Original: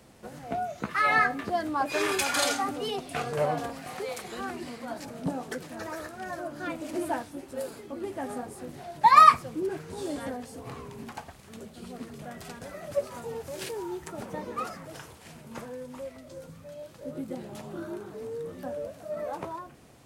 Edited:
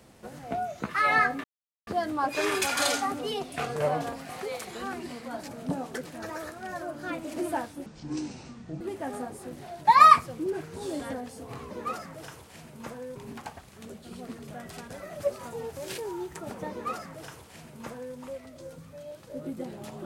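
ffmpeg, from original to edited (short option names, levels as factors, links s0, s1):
-filter_complex "[0:a]asplit=6[s0][s1][s2][s3][s4][s5];[s0]atrim=end=1.44,asetpts=PTS-STARTPTS,afade=t=out:st=1.436:d=0.004:c=hsin,apad=pad_dur=0.43[s6];[s1]atrim=start=1.44:end=7.434,asetpts=PTS-STARTPTS,afade=t=in:d=0.004:c=hsin[s7];[s2]atrim=start=7.43:end=7.97,asetpts=PTS-STARTPTS,asetrate=25137,aresample=44100[s8];[s3]atrim=start=7.966:end=10.872[s9];[s4]atrim=start=14.418:end=15.872[s10];[s5]atrim=start=10.868[s11];[s6][s7]concat=n=2:v=0:a=1[s12];[s12][s8]acrossfade=d=0.004:c1=hsin:c2=hsin[s13];[s13][s9]acrossfade=d=0.004:c1=hsin:c2=hsin[s14];[s14][s10]acrossfade=d=0.004:c1=hsin:c2=hsin[s15];[s15][s11]acrossfade=d=0.004:c1=hsin:c2=hsin"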